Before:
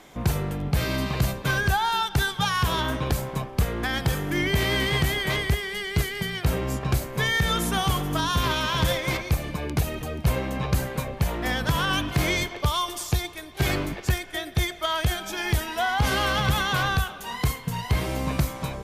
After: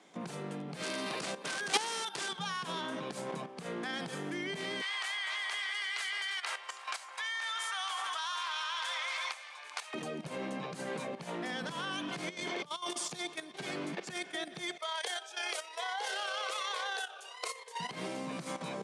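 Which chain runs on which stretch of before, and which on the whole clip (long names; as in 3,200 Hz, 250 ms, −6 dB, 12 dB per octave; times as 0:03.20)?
0:00.82–0:02.29: bass and treble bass −11 dB, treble +2 dB + bad sample-rate conversion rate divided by 3×, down none, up hold + wrap-around overflow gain 19 dB
0:04.81–0:09.94: high-pass filter 930 Hz 24 dB per octave + high-shelf EQ 9,400 Hz −8.5 dB + delay that swaps between a low-pass and a high-pass 162 ms, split 1,300 Hz, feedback 57%, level −5 dB
0:12.29–0:12.91: compressor whose output falls as the input rises −34 dBFS + linear-phase brick-wall low-pass 13,000 Hz
0:14.77–0:17.80: elliptic high-pass filter 450 Hz, stop band 50 dB + amplitude modulation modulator 33 Hz, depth 20% + phaser whose notches keep moving one way falling 1.1 Hz
whole clip: brickwall limiter −19 dBFS; output level in coarse steps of 12 dB; Chebyshev band-pass filter 170–9,600 Hz, order 4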